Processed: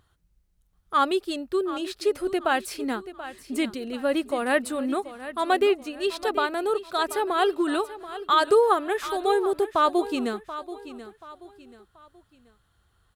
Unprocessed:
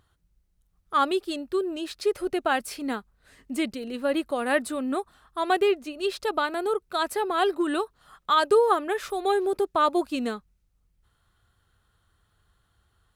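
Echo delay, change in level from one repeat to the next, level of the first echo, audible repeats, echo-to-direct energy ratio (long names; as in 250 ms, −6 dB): 732 ms, −9.0 dB, −14.0 dB, 3, −13.5 dB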